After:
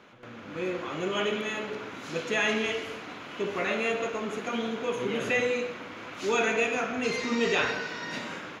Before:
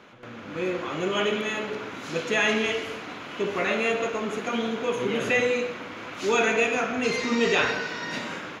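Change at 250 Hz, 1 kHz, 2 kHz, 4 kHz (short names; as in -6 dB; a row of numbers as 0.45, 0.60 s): -3.5, -3.5, -3.5, -3.5 dB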